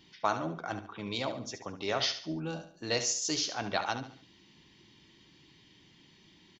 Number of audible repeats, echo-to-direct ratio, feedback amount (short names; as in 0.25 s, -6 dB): 3, -9.5 dB, 38%